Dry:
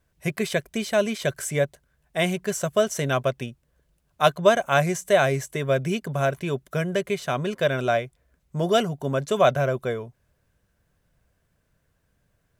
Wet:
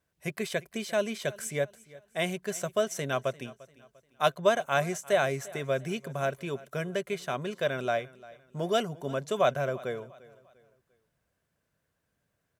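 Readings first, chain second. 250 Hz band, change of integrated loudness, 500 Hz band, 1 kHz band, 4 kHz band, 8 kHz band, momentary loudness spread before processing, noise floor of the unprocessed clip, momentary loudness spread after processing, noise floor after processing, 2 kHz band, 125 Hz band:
-8.0 dB, -6.5 dB, -6.5 dB, -6.0 dB, -6.0 dB, -6.0 dB, 9 LU, -71 dBFS, 10 LU, -80 dBFS, -6.0 dB, -9.5 dB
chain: high-pass 170 Hz 6 dB/octave; feedback delay 347 ms, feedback 37%, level -20.5 dB; trim -6 dB

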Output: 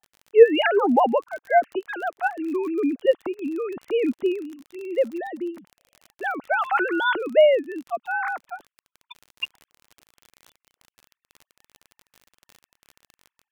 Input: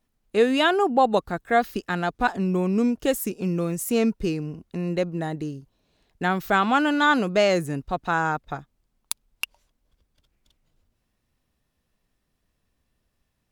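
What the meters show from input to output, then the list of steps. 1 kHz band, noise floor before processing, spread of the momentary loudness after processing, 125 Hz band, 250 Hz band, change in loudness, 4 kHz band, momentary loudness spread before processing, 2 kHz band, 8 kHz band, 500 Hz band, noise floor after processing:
-1.0 dB, -75 dBFS, 16 LU, under -25 dB, -3.0 dB, +1.0 dB, -2.5 dB, 14 LU, 0.0 dB, under -15 dB, +4.5 dB, under -85 dBFS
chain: formants replaced by sine waves; crackle 36 per s -34 dBFS; trim +1 dB

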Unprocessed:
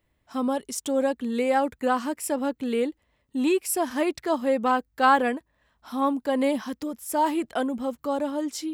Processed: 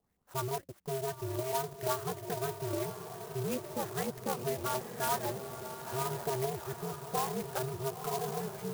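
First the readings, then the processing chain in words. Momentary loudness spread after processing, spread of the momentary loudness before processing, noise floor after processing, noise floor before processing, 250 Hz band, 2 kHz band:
6 LU, 7 LU, -62 dBFS, -72 dBFS, -16.0 dB, -13.0 dB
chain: compression 4:1, threshold -25 dBFS, peak gain reduction 9.5 dB; LFO low-pass saw up 5.9 Hz 700–3300 Hz; ring modulator 130 Hz; echo that smears into a reverb 953 ms, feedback 53%, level -8 dB; sampling jitter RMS 0.09 ms; trim -5.5 dB

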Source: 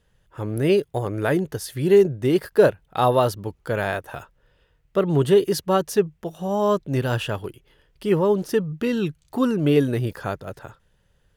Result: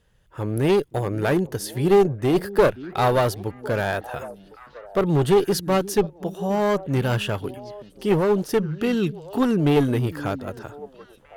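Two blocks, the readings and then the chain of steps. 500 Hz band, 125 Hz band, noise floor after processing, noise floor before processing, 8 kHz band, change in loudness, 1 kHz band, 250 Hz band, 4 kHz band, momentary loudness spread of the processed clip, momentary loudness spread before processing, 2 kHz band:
-1.0 dB, +1.0 dB, -53 dBFS, -65 dBFS, +1.5 dB, -0.5 dB, +0.5 dB, +0.5 dB, +1.0 dB, 15 LU, 13 LU, +1.0 dB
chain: one-sided clip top -19.5 dBFS; repeats whose band climbs or falls 528 ms, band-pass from 230 Hz, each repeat 1.4 oct, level -12 dB; trim +1.5 dB

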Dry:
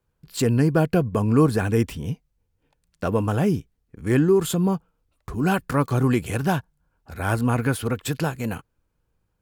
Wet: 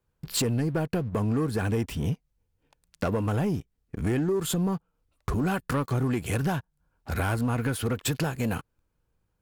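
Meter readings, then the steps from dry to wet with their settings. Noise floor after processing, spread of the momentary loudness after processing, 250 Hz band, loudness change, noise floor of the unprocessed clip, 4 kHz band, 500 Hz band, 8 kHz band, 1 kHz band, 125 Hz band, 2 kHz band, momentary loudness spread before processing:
-76 dBFS, 8 LU, -6.0 dB, -5.5 dB, -73 dBFS, 0.0 dB, -7.0 dB, 0.0 dB, -6.0 dB, -4.5 dB, -4.5 dB, 13 LU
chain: compression 6:1, threshold -32 dBFS, peak gain reduction 18 dB; waveshaping leveller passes 2; trim +1.5 dB

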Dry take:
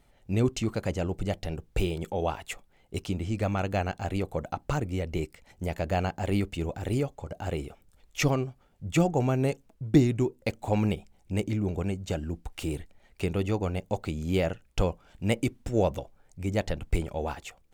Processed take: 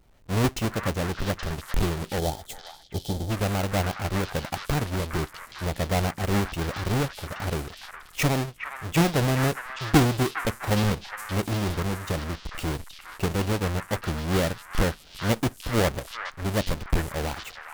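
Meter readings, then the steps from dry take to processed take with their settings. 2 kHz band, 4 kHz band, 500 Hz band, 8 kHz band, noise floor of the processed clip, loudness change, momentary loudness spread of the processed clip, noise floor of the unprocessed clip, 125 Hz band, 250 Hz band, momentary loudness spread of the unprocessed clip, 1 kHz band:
+7.0 dB, +8.0 dB, +1.0 dB, +7.5 dB, -50 dBFS, +2.5 dB, 9 LU, -63 dBFS, +3.0 dB, +1.5 dB, 10 LU, +5.0 dB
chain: square wave that keeps the level; repeats whose band climbs or falls 412 ms, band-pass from 1.5 kHz, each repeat 1.4 oct, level -1.5 dB; time-frequency box 2.19–3.30 s, 910–3000 Hz -13 dB; trim -2 dB

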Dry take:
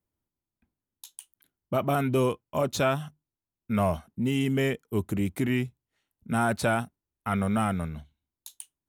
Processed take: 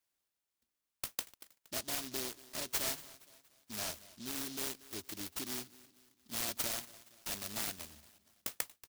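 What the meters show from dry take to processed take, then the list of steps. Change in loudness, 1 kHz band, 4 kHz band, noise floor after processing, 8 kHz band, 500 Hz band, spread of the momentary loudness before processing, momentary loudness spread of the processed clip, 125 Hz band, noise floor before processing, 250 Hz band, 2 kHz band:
-11.0 dB, -18.5 dB, -1.0 dB, under -85 dBFS, +3.0 dB, -20.0 dB, 18 LU, 15 LU, -26.0 dB, under -85 dBFS, -20.5 dB, -12.0 dB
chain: Chebyshev shaper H 3 -18 dB, 6 -22 dB, 8 -24 dB, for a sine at -12 dBFS; bass shelf 180 Hz -9.5 dB; comb 3.1 ms; in parallel at +2.5 dB: compression, threshold -37 dBFS, peak gain reduction 16.5 dB; on the sum: pre-emphasis filter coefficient 0.9; on a send: feedback delay 234 ms, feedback 46%, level -19.5 dB; on the sum: delay time shaken by noise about 4.5 kHz, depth 0.32 ms; trim +1 dB

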